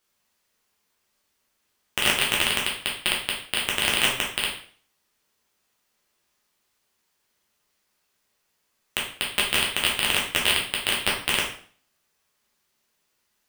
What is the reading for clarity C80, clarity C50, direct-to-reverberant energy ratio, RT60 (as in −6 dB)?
10.0 dB, 5.0 dB, −3.5 dB, 0.45 s